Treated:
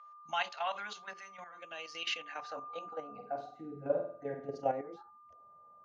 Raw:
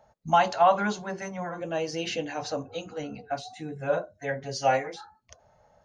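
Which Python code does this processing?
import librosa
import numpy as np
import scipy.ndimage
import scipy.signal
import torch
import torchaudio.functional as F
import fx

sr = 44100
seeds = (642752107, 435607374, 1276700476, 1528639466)

y = fx.high_shelf(x, sr, hz=5600.0, db=2.0)
y = fx.level_steps(y, sr, step_db=11)
y = y + 10.0 ** (-44.0 / 20.0) * np.sin(2.0 * np.pi * 1200.0 * np.arange(len(y)) / sr)
y = fx.room_flutter(y, sr, wall_m=8.5, rt60_s=0.51, at=(3.19, 4.6), fade=0.02)
y = fx.filter_sweep_bandpass(y, sr, from_hz=2800.0, to_hz=330.0, start_s=2.06, end_s=3.66, q=1.3)
y = F.gain(torch.from_numpy(y), 1.0).numpy()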